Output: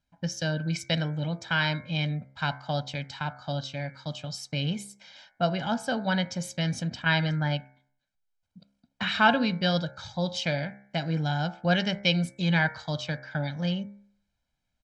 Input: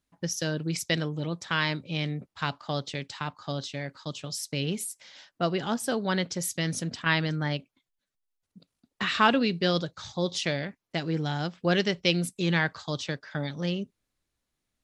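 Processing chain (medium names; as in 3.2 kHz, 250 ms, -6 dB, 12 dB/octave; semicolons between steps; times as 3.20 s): distance through air 86 m; comb 1.3 ms, depth 74%; de-hum 67.2 Hz, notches 34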